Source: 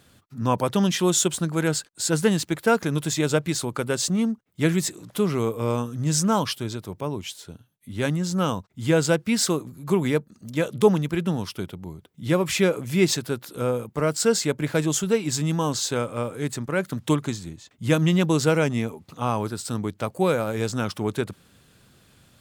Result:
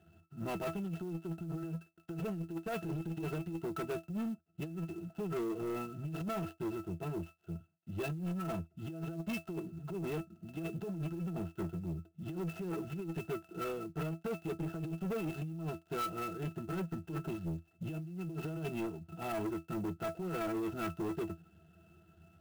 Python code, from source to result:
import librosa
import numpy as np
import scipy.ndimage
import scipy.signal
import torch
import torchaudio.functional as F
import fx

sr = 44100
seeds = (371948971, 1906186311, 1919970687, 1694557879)

y = fx.dead_time(x, sr, dead_ms=0.15)
y = fx.octave_resonator(y, sr, note='E', decay_s=0.15)
y = fx.dynamic_eq(y, sr, hz=420.0, q=3.9, threshold_db=-47.0, ratio=4.0, max_db=5)
y = fx.over_compress(y, sr, threshold_db=-36.0, ratio=-1.0)
y = fx.highpass(y, sr, hz=130.0, slope=6)
y = fx.high_shelf(y, sr, hz=3200.0, db=9.5)
y = 10.0 ** (-35.5 / 20.0) * np.tanh(y / 10.0 ** (-35.5 / 20.0))
y = fx.clock_jitter(y, sr, seeds[0], jitter_ms=0.021)
y = y * librosa.db_to_amplitude(3.0)